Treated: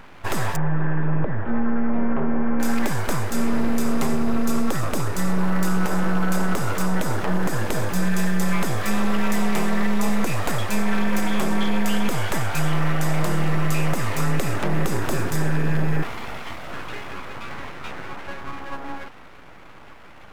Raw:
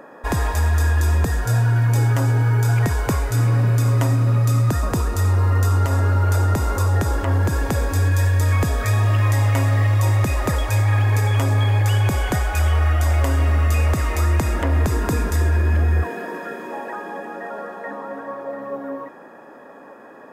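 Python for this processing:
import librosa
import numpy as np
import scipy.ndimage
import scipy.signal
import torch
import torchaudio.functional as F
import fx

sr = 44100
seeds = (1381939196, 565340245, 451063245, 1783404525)

y = np.abs(x)
y = fx.gaussian_blur(y, sr, sigma=4.4, at=(0.56, 2.6))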